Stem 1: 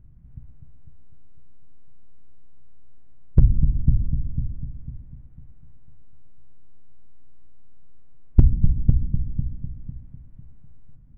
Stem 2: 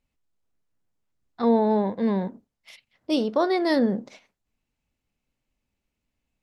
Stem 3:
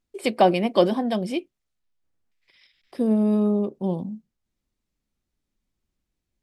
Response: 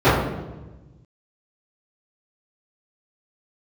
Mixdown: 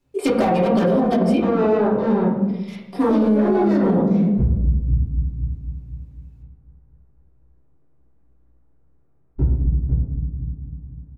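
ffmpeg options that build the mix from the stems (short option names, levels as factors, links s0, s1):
-filter_complex "[0:a]equalizer=f=110:t=o:w=1.2:g=-11.5,adelay=1000,volume=0.141,asplit=2[s0][s1];[s1]volume=0.266[s2];[1:a]asoftclip=type=tanh:threshold=0.0501,volume=0.944,asplit=2[s3][s4];[s4]volume=0.158[s5];[2:a]aecho=1:1:4.2:0.58,asoftclip=type=hard:threshold=0.112,volume=1.19,asplit=3[s6][s7][s8];[s7]volume=0.106[s9];[s8]apad=whole_len=283335[s10];[s3][s10]sidechaincompress=threshold=0.0224:ratio=8:attack=16:release=108[s11];[3:a]atrim=start_sample=2205[s12];[s2][s5][s9]amix=inputs=3:normalize=0[s13];[s13][s12]afir=irnorm=-1:irlink=0[s14];[s0][s11][s6][s14]amix=inputs=4:normalize=0,alimiter=limit=0.335:level=0:latency=1:release=88"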